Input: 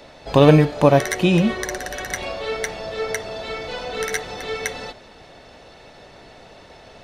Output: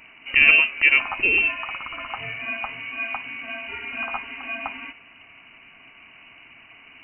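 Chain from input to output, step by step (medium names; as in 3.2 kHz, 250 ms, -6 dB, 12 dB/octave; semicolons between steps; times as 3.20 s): frequency inversion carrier 2.9 kHz; trim -3.5 dB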